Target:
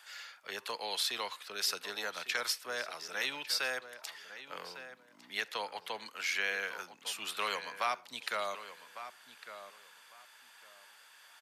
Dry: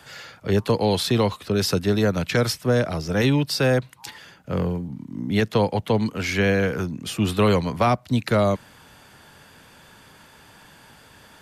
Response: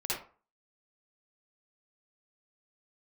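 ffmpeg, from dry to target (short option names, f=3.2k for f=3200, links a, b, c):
-filter_complex "[0:a]highpass=1.2k,asplit=2[a][b];[b]adelay=1153,lowpass=f=3.2k:p=1,volume=-12dB,asplit=2[c][d];[d]adelay=1153,lowpass=f=3.2k:p=1,volume=0.21,asplit=2[e][f];[f]adelay=1153,lowpass=f=3.2k:p=1,volume=0.21[g];[a][c][e][g]amix=inputs=4:normalize=0,asplit=2[h][i];[1:a]atrim=start_sample=2205[j];[i][j]afir=irnorm=-1:irlink=0,volume=-27dB[k];[h][k]amix=inputs=2:normalize=0,volume=-6.5dB"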